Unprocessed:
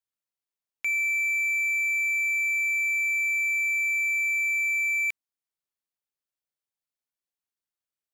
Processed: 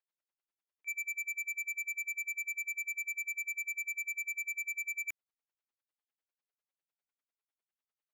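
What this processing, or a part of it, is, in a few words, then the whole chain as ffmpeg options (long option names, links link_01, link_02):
helicopter radio: -af "highpass=300,lowpass=2900,aeval=exprs='val(0)*pow(10,-40*(0.5-0.5*cos(2*PI*10*n/s))/20)':channel_layout=same,asoftclip=type=hard:threshold=-39.5dB,volume=5.5dB"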